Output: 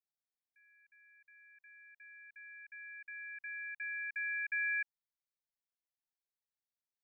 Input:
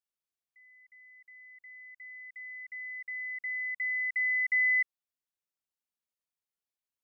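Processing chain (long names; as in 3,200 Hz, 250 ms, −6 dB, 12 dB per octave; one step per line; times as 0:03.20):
ring modulation 340 Hz
phaser with its sweep stopped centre 1,900 Hz, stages 8
level −3.5 dB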